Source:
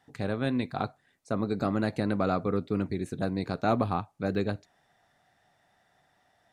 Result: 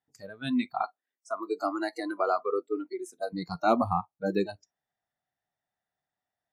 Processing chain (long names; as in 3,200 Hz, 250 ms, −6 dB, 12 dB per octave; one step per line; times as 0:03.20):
0:00.82–0:03.33: high-pass filter 270 Hz 24 dB per octave
noise reduction from a noise print of the clip's start 26 dB
level +3.5 dB